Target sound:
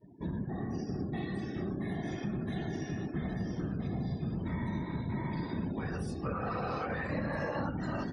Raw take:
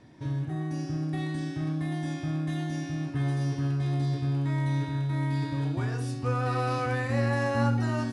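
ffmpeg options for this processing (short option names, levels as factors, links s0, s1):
-filter_complex "[0:a]afftfilt=real='hypot(re,im)*cos(2*PI*random(0))':imag='hypot(re,im)*sin(2*PI*random(1))':win_size=512:overlap=0.75,highpass=f=110:p=1,asplit=2[s0][s1];[s1]alimiter=level_in=1.5:limit=0.0631:level=0:latency=1:release=383,volume=0.668,volume=0.891[s2];[s0][s2]amix=inputs=2:normalize=0,acompressor=threshold=0.0224:ratio=2.5,afftdn=nr=31:nf=-52"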